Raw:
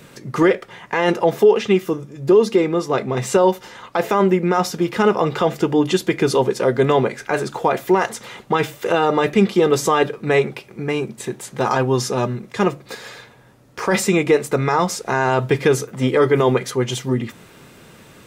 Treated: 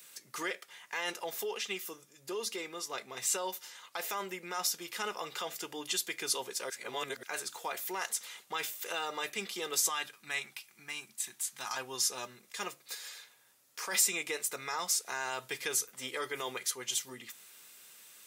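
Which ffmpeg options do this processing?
-filter_complex "[0:a]asettb=1/sr,asplit=3[a][b][c];[a]atrim=end=9.894[d];[b]atrim=start=9.89:end=11.77,asetpts=PTS-STARTPTS,afade=t=in:d=0.004:c=qsin,afade=t=out:st=1.876:d=0.004:c=qsin,equalizer=f=460:t=o:w=0.77:g=-14[e];[c]atrim=start=11.766[f];[d][e]acrossfade=d=0.004:c1=hsin:c2=qsin[g];[g][f]acrossfade=d=0.004:c1=qsin:c2=hsin,asplit=3[h][i][j];[h]atrim=end=6.702[k];[i]atrim=start=6.698:end=7.232,asetpts=PTS-STARTPTS,areverse[l];[j]atrim=start=7.228[m];[k][l]acrossfade=d=0.004:c1=hsin:c2=hsin[n];[n][m]acrossfade=d=0.004:c1=hsin:c2=hsin,aderivative,volume=-1.5dB"

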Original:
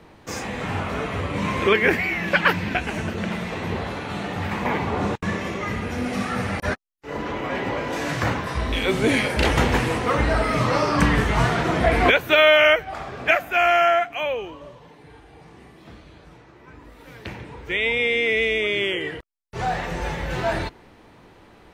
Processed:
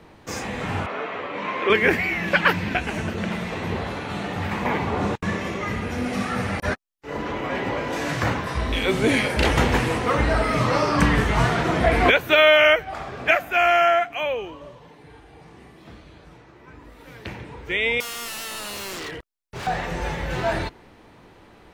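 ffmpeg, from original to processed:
-filter_complex "[0:a]asettb=1/sr,asplit=3[a][b][c];[a]atrim=end=0.864[d];[b]atrim=start=0.86:end=1.7,asetpts=PTS-STARTPTS,afade=t=in:d=0.004:c=qsin,afade=t=out:st=0.836:d=0.004:c=qsin,highpass=390,lowpass=3.1k[e];[c]atrim=start=1.696[f];[d][e]acrossfade=d=0.004:c1=hsin:c2=qsin[g];[g][f]acrossfade=d=0.004:c1=qsin:c2=hsin,asettb=1/sr,asplit=3[h][i][j];[h]atrim=end=18.004[k];[i]atrim=start=18:end=19.67,asetpts=PTS-STARTPTS,afade=t=in:d=0.004:c=qsin,afade=t=out:st=1.666:d=0.004:c=qsin,aeval=exprs='0.0398*(abs(mod(val(0)/0.0398+3,4)-2)-1)':c=same[l];[j]atrim=start=19.666[m];[k][l]acrossfade=d=0.004:c1=hsin:c2=qsin[n];[n][m]acrossfade=d=0.004:c1=qsin:c2=hsin"

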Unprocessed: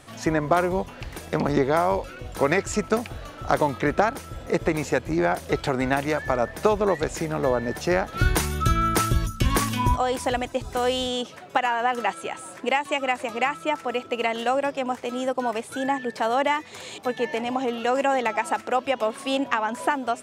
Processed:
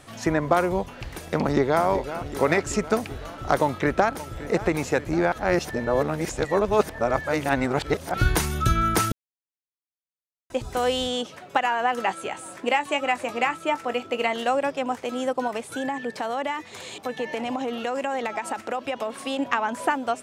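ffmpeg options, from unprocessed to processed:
-filter_complex "[0:a]asplit=2[a][b];[b]afade=t=in:st=1.38:d=0.01,afade=t=out:st=1.84:d=0.01,aecho=0:1:380|760|1140|1520|1900|2280|2660|3040|3420|3800:0.266073|0.186251|0.130376|0.0912629|0.063884|0.0447188|0.0313032|0.0219122|0.0153386|0.010737[c];[a][c]amix=inputs=2:normalize=0,asplit=2[d][e];[e]afade=t=in:st=3.62:d=0.01,afade=t=out:st=4.09:d=0.01,aecho=0:1:570|1140|1710|2280|2850|3420|3990|4560|5130|5700:0.16788|0.12591|0.0944327|0.0708245|0.0531184|0.0398388|0.0298791|0.0224093|0.016807|0.0126052[f];[d][f]amix=inputs=2:normalize=0,asettb=1/sr,asplit=3[g][h][i];[g]atrim=end=12.054[j];[h]atrim=start=12.05:end=14.34,asetpts=PTS-STARTPTS,afade=t=in:d=0.004:c=qsin,afade=t=out:st=2.286:d=0.004:c=qsin,asplit=2[k][l];[l]adelay=21,volume=-11.5dB[m];[k][m]amix=inputs=2:normalize=0,atrim=end_sample=100989[n];[i]atrim=start=14.336[o];[j][n]acrossfade=d=0.004:c1=hsin:c2=qsin[p];[p][o]acrossfade=d=0.004:c1=qsin:c2=hsin,asettb=1/sr,asplit=3[q][r][s];[q]atrim=end=15.474[t];[r]atrim=start=15.47:end=19.39,asetpts=PTS-STARTPTS,afade=t=in:d=0.004:c=qsin,afade=t=out:st=3.916:d=0.004:c=qsin,acompressor=threshold=-23dB:ratio=6:attack=3.2:release=140:knee=1:detection=peak[u];[s]atrim=start=19.386[v];[t][u]acrossfade=d=0.004:c1=hsin:c2=qsin[w];[w][v]acrossfade=d=0.004:c1=qsin:c2=hsin,asplit=5[x][y][z][aa][ab];[x]atrim=end=5.322[ac];[y]atrim=start=5.318:end=8.142,asetpts=PTS-STARTPTS,areverse[ad];[z]atrim=start=8.138:end=9.12,asetpts=PTS-STARTPTS,afade=t=out:st=0.978:d=0.004:c=hsin[ae];[aa]atrim=start=9.12:end=10.5,asetpts=PTS-STARTPTS,volume=0[af];[ab]atrim=start=10.5,asetpts=PTS-STARTPTS,afade=t=in:d=0.004:c=hsin[ag];[ac][ad]acrossfade=d=0.004:c1=hsin:c2=hsin[ah];[ae][af][ag]concat=n=3:v=0:a=1[ai];[ah][ai]acrossfade=d=0.004:c1=hsin:c2=hsin"

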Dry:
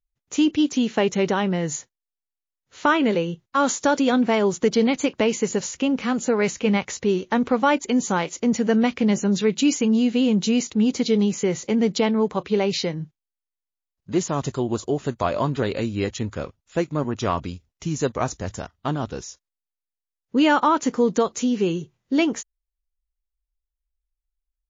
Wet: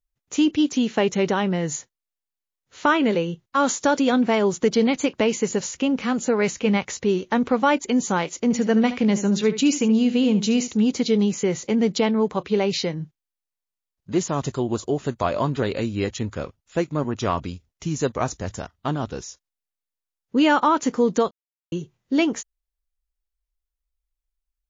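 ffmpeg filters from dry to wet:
-filter_complex "[0:a]asettb=1/sr,asplit=3[a][b][c];[a]atrim=end=8.434[d];[b]atrim=start=8.43:end=10.83,asetpts=PTS-STARTPTS,afade=t=in:d=0.004:c=qsin,afade=t=out:st=2.396:d=0.004:c=qsin,aecho=1:1:73:0.224,atrim=end_sample=105840[e];[c]atrim=start=10.826[f];[d][e]acrossfade=d=0.004:c1=hsin:c2=qsin[g];[g][f]acrossfade=d=0.004:c1=qsin:c2=hsin,asplit=3[h][i][j];[h]atrim=end=21.31,asetpts=PTS-STARTPTS,afade=t=out:st=21.306:d=0.004:c=hsin[k];[i]atrim=start=21.31:end=21.72,asetpts=PTS-STARTPTS,volume=0[l];[j]atrim=start=21.72,asetpts=PTS-STARTPTS,afade=t=in:d=0.004:c=hsin[m];[k][l][m]concat=n=3:v=0:a=1"

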